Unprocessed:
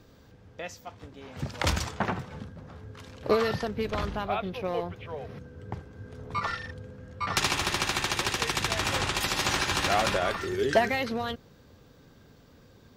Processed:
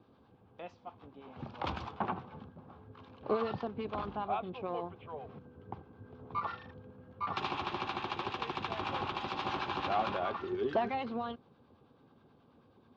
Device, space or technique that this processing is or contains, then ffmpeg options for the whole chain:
guitar amplifier with harmonic tremolo: -filter_complex "[0:a]acrossover=split=790[link_01][link_02];[link_01]aeval=exprs='val(0)*(1-0.5/2+0.5/2*cos(2*PI*9.3*n/s))':channel_layout=same[link_03];[link_02]aeval=exprs='val(0)*(1-0.5/2-0.5/2*cos(2*PI*9.3*n/s))':channel_layout=same[link_04];[link_03][link_04]amix=inputs=2:normalize=0,asoftclip=type=tanh:threshold=-18.5dB,highpass=89,equalizer=frequency=240:width_type=q:width=4:gain=5,equalizer=frequency=360:width_type=q:width=4:gain=5,equalizer=frequency=800:width_type=q:width=4:gain=8,equalizer=frequency=1100:width_type=q:width=4:gain=7,equalizer=frequency=1900:width_type=q:width=4:gain=-9,lowpass=frequency=3600:width=0.5412,lowpass=frequency=3600:width=1.3066,volume=-7dB"

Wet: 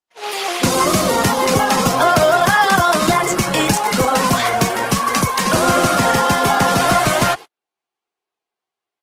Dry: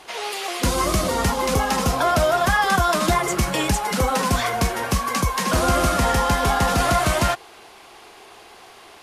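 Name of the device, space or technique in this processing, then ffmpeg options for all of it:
video call: -af "highpass=frequency=110:width=0.5412,highpass=frequency=110:width=1.3066,dynaudnorm=framelen=200:gausssize=3:maxgain=8dB,agate=range=-49dB:threshold=-27dB:ratio=16:detection=peak" -ar 48000 -c:a libopus -b:a 16k

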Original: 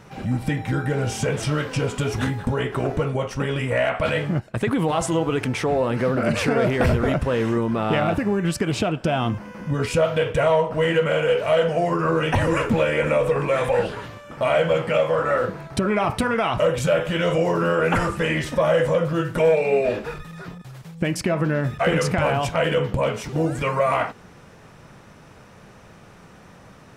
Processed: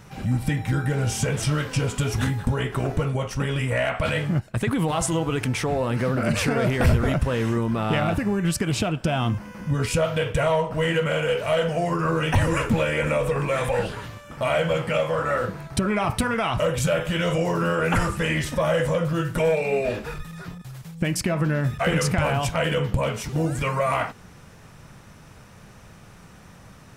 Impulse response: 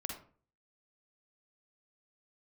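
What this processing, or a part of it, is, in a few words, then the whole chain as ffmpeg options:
smiley-face EQ: -af "lowshelf=frequency=140:gain=6.5,equalizer=frequency=430:width_type=o:width=1.7:gain=-3.5,highshelf=frequency=6500:gain=8.5,volume=-1.5dB"

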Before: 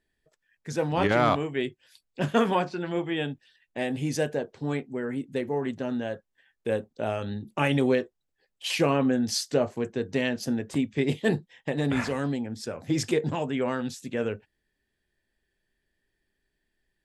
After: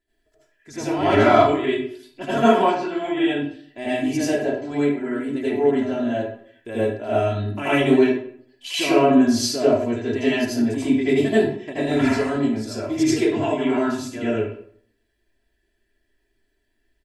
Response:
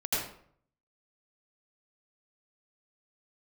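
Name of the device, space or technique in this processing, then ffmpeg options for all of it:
microphone above a desk: -filter_complex "[0:a]aecho=1:1:3:0.86[link_01];[1:a]atrim=start_sample=2205[link_02];[link_01][link_02]afir=irnorm=-1:irlink=0,volume=-3.5dB"

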